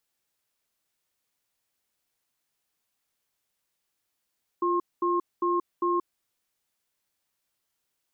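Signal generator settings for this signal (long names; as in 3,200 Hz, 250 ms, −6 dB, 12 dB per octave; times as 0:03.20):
tone pair in a cadence 349 Hz, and 1,070 Hz, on 0.18 s, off 0.22 s, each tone −25 dBFS 1.60 s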